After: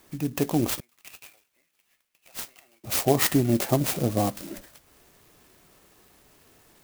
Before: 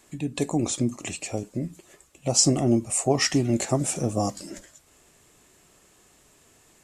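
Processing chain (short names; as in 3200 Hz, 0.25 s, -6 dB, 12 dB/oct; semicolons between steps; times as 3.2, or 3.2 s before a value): 0.8–2.84 ladder band-pass 3100 Hz, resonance 35%; clock jitter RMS 0.063 ms; gain +1 dB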